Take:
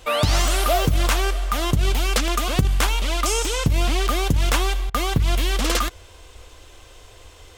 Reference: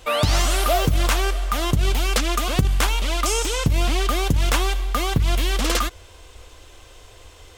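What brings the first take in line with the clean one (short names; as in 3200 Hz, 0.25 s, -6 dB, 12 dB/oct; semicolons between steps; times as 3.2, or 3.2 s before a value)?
de-click; interpolate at 4.9, 41 ms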